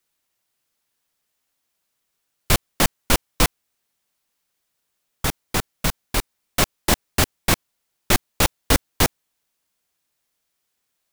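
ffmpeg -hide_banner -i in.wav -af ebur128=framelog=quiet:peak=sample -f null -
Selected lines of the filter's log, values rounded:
Integrated loudness:
  I:         -22.4 LUFS
  Threshold: -32.5 LUFS
Loudness range:
  LRA:         5.2 LU
  Threshold: -44.6 LUFS
  LRA low:   -27.4 LUFS
  LRA high:  -22.2 LUFS
Sample peak:
  Peak:       -1.8 dBFS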